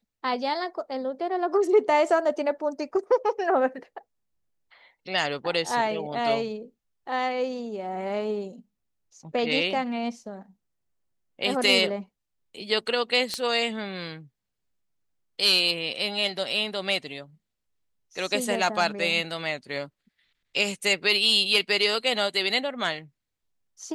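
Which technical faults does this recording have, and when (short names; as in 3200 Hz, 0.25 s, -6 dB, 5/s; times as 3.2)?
13.34 pop -13 dBFS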